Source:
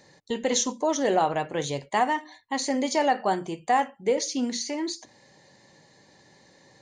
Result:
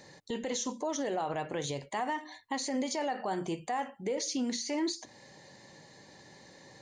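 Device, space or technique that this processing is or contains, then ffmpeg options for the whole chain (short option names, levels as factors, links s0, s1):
stacked limiters: -af "alimiter=limit=0.126:level=0:latency=1:release=87,alimiter=limit=0.0668:level=0:latency=1:release=293,alimiter=level_in=1.41:limit=0.0631:level=0:latency=1:release=64,volume=0.708,volume=1.26"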